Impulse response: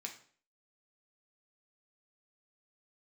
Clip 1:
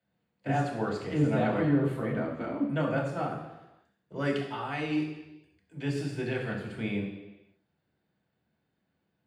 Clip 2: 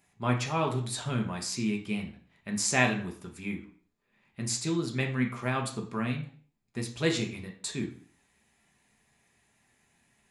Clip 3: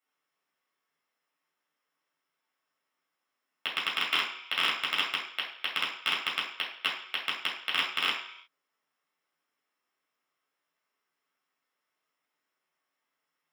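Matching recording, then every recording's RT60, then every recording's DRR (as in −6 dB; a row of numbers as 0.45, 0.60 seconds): 2; 1.0 s, 0.50 s, non-exponential decay; −3.5, 1.5, −6.5 decibels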